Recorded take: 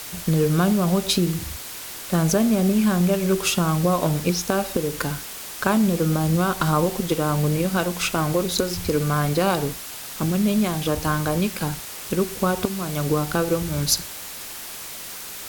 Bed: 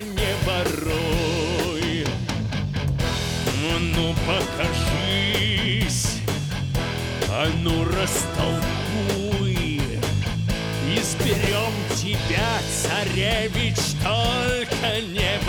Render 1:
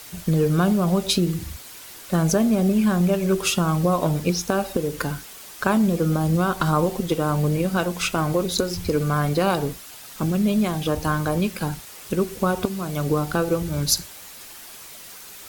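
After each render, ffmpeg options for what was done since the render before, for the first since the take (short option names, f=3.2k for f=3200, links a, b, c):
-af "afftdn=nr=7:nf=-36"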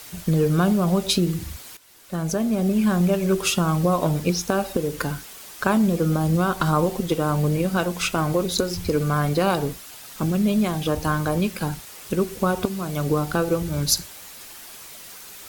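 -filter_complex "[0:a]asplit=2[a][b];[a]atrim=end=1.77,asetpts=PTS-STARTPTS,afade=t=out:st=1.766:d=0.004:c=hsin:silence=0.177828[c];[b]atrim=start=1.77,asetpts=PTS-STARTPTS,afade=t=in:d=1.16:silence=0.177828[d];[c][d]concat=n=2:v=0:a=1"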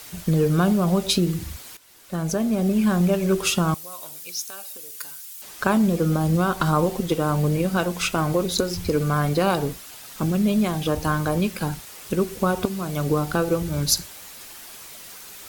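-filter_complex "[0:a]asettb=1/sr,asplit=3[a][b][c];[a]atrim=end=3.744[d];[b]atrim=start=3.74:end=5.42,asetpts=PTS-STARTPTS,afade=t=in:d=0.004:c=qsin,afade=t=out:st=1.676:d=0.004:c=qsin,aderivative[e];[c]atrim=start=5.416[f];[d][e]acrossfade=d=0.004:c1=hsin:c2=qsin[g];[g][f]acrossfade=d=0.004:c1=qsin:c2=hsin"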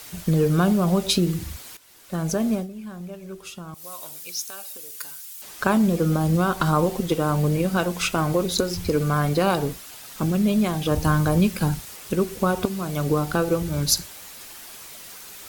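-filter_complex "[0:a]asettb=1/sr,asplit=3[a][b][c];[a]atrim=end=10.914[d];[b]atrim=start=10.91:end=11.96,asetpts=PTS-STARTPTS,afade=t=in:d=0.004:c=qsin,afade=t=out:st=1.046:d=0.004:c=qsin,bass=f=250:g=6,treble=f=4k:g=2[e];[c]atrim=start=11.956[f];[d][e]acrossfade=d=0.004:c1=hsin:c2=qsin[g];[g][f]acrossfade=d=0.004:c1=qsin:c2=hsin,asplit=3[h][i][j];[h]atrim=end=2.67,asetpts=PTS-STARTPTS,afade=t=out:st=2.53:d=0.14:silence=0.149624[k];[i]atrim=start=2.67:end=3.73,asetpts=PTS-STARTPTS,volume=-16.5dB[l];[j]atrim=start=3.73,asetpts=PTS-STARTPTS,afade=t=in:d=0.14:silence=0.149624[m];[k][l][m]concat=n=3:v=0:a=1"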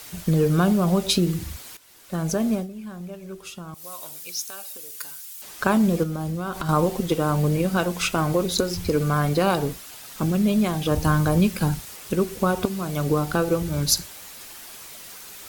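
-filter_complex "[0:a]asettb=1/sr,asplit=3[a][b][c];[a]atrim=end=6.034[d];[b]atrim=start=6.03:end=6.69,asetpts=PTS-STARTPTS,afade=t=in:d=0.004:c=qsin,afade=t=out:st=0.656:d=0.004:c=qsin,acompressor=threshold=-25dB:ratio=6:attack=3.2:release=140:knee=1:detection=peak[e];[c]atrim=start=6.686[f];[d][e]acrossfade=d=0.004:c1=hsin:c2=qsin[g];[g][f]acrossfade=d=0.004:c1=qsin:c2=hsin"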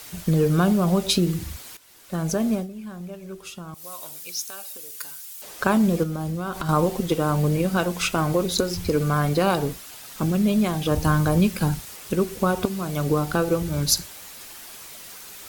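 -filter_complex "[0:a]asettb=1/sr,asplit=3[a][b][c];[a]atrim=end=5.214[d];[b]atrim=start=5.21:end=5.63,asetpts=PTS-STARTPTS,afade=t=in:d=0.004:c=qsin,afade=t=out:st=0.416:d=0.004:c=qsin,equalizer=f=530:t=o:w=0.91:g=8.5[e];[c]atrim=start=5.626[f];[d][e]acrossfade=d=0.004:c1=hsin:c2=qsin[g];[g][f]acrossfade=d=0.004:c1=qsin:c2=hsin"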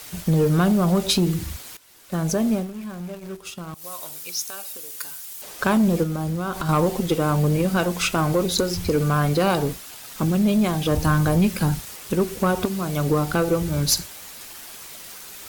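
-filter_complex "[0:a]asplit=2[a][b];[b]acrusher=bits=5:mix=0:aa=0.000001,volume=-9.5dB[c];[a][c]amix=inputs=2:normalize=0,asoftclip=type=tanh:threshold=-11dB"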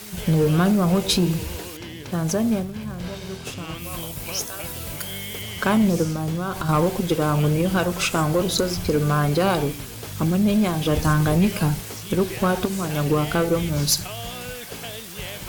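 -filter_complex "[1:a]volume=-12.5dB[a];[0:a][a]amix=inputs=2:normalize=0"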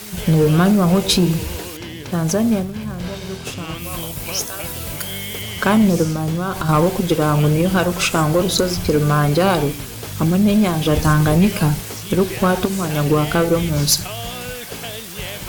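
-af "volume=4.5dB"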